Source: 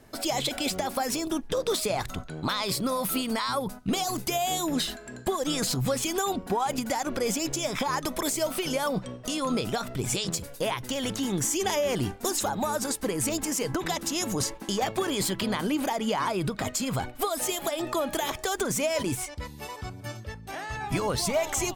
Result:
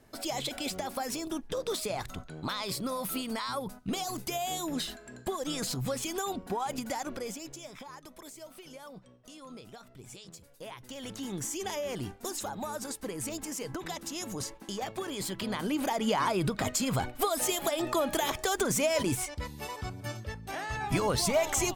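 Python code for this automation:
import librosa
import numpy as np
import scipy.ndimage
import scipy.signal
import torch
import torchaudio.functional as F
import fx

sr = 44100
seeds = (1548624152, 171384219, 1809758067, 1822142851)

y = fx.gain(x, sr, db=fx.line((7.04, -6.0), (7.39, -13.0), (7.99, -19.5), (10.32, -19.5), (11.27, -8.5), (15.15, -8.5), (16.09, -0.5)))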